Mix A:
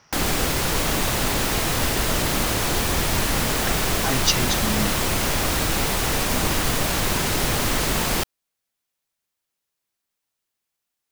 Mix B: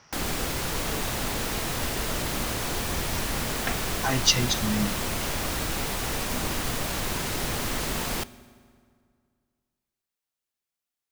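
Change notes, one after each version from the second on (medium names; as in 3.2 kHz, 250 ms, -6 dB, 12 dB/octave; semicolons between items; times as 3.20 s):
background -9.0 dB; reverb: on, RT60 2.1 s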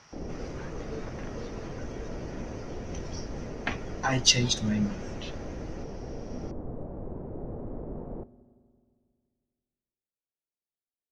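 background: add four-pole ladder low-pass 690 Hz, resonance 25%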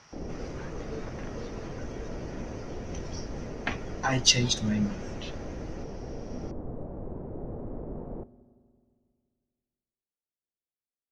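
no change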